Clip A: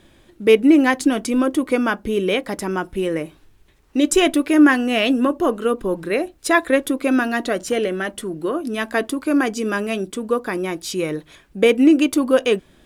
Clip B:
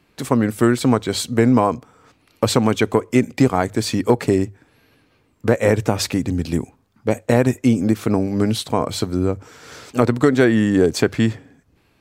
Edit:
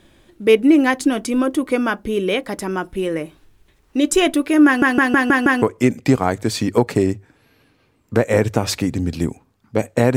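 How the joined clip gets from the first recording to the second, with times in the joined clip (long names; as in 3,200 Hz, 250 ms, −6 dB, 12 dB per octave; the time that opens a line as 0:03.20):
clip A
0:04.66: stutter in place 0.16 s, 6 plays
0:05.62: continue with clip B from 0:02.94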